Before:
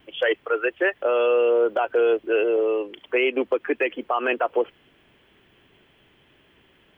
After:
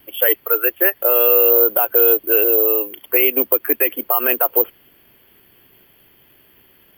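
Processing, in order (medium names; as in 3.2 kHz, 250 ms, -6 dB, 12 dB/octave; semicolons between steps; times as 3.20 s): careless resampling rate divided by 3×, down none, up zero stuff; trim +1.5 dB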